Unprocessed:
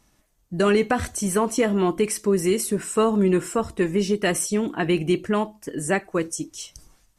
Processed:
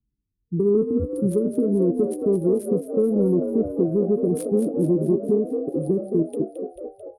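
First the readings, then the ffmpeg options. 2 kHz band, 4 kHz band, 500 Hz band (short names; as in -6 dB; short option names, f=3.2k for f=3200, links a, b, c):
under -30 dB, under -25 dB, +1.5 dB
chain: -filter_complex "[0:a]highpass=46,anlmdn=63.1,afftfilt=real='re*(1-between(b*sr/4096,460,9100))':imag='im*(1-between(b*sr/4096,460,9100))':win_size=4096:overlap=0.75,lowshelf=f=63:g=-10,acontrast=36,alimiter=limit=-12.5dB:level=0:latency=1:release=205,adynamicsmooth=sensitivity=2:basefreq=3.3k,asplit=2[a][b];[b]adelay=12,volume=-13.5dB[c];[a][c]amix=inputs=2:normalize=0,asplit=2[d][e];[e]asplit=8[f][g][h][i][j][k][l][m];[f]adelay=220,afreqshift=50,volume=-8dB[n];[g]adelay=440,afreqshift=100,volume=-12dB[o];[h]adelay=660,afreqshift=150,volume=-16dB[p];[i]adelay=880,afreqshift=200,volume=-20dB[q];[j]adelay=1100,afreqshift=250,volume=-24.1dB[r];[k]adelay=1320,afreqshift=300,volume=-28.1dB[s];[l]adelay=1540,afreqshift=350,volume=-32.1dB[t];[m]adelay=1760,afreqshift=400,volume=-36.1dB[u];[n][o][p][q][r][s][t][u]amix=inputs=8:normalize=0[v];[d][v]amix=inputs=2:normalize=0"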